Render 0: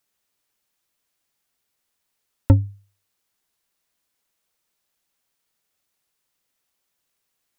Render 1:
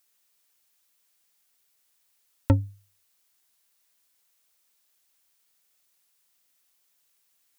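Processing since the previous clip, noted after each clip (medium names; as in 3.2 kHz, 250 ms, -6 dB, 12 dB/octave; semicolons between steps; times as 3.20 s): tilt EQ +2 dB/octave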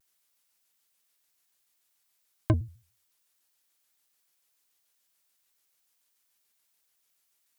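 vibrato with a chosen wave square 6.9 Hz, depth 250 cents; trim -3.5 dB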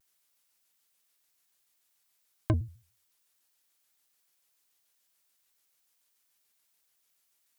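peak limiter -14.5 dBFS, peak gain reduction 3.5 dB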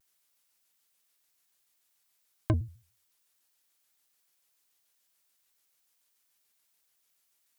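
no audible change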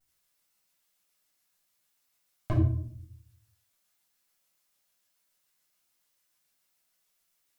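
simulated room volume 720 m³, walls furnished, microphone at 7.1 m; trim -8.5 dB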